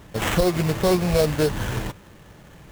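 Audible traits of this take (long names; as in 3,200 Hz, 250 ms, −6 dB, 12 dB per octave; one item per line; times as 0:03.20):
aliases and images of a low sample rate 4,800 Hz, jitter 20%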